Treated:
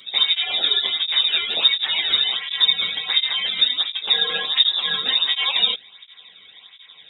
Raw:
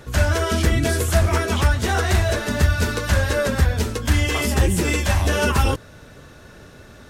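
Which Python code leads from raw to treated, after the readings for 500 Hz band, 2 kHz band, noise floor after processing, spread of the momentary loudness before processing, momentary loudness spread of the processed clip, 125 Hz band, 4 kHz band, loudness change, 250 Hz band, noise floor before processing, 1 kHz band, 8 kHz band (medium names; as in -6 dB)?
-16.5 dB, -2.5 dB, -49 dBFS, 2 LU, 4 LU, under -35 dB, +15.0 dB, +2.0 dB, under -20 dB, -45 dBFS, -8.5 dB, under -40 dB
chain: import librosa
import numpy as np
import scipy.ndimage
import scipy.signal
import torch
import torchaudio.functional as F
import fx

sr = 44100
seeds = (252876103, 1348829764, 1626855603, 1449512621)

y = fx.freq_invert(x, sr, carrier_hz=3700)
y = fx.flanger_cancel(y, sr, hz=1.4, depth_ms=1.2)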